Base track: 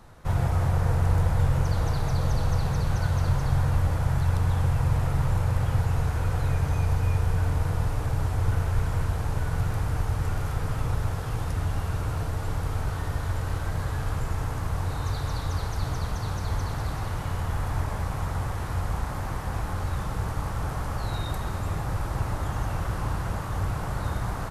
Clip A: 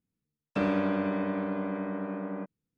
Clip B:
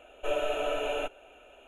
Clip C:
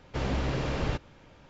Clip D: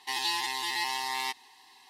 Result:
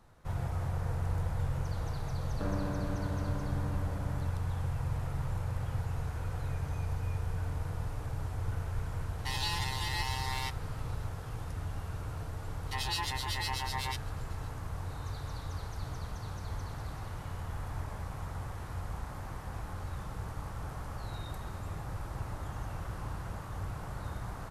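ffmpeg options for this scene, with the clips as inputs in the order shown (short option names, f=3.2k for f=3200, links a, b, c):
-filter_complex "[4:a]asplit=2[a][b];[0:a]volume=-10.5dB[c];[1:a]lowpass=f=1.8k:w=0.5412,lowpass=f=1.8k:w=1.3066[d];[b]acrossover=split=2400[e][f];[e]aeval=exprs='val(0)*(1-1/2+1/2*cos(2*PI*8*n/s))':c=same[g];[f]aeval=exprs='val(0)*(1-1/2-1/2*cos(2*PI*8*n/s))':c=same[h];[g][h]amix=inputs=2:normalize=0[i];[d]atrim=end=2.77,asetpts=PTS-STARTPTS,volume=-10dB,afade=t=in:d=0.004:c=hsin,afade=t=out:st=2.766:d=0.004:c=hsin,adelay=1840[j];[a]atrim=end=1.89,asetpts=PTS-STARTPTS,volume=-5dB,afade=t=in:d=0.004:c=hsin,afade=t=out:st=1.886:d=0.004:c=hsin,adelay=9180[k];[i]atrim=end=1.89,asetpts=PTS-STARTPTS,afade=t=in:d=0.004:c=hsin,afade=t=out:st=1.886:d=0.004:c=hsin,adelay=12640[l];[c][j][k][l]amix=inputs=4:normalize=0"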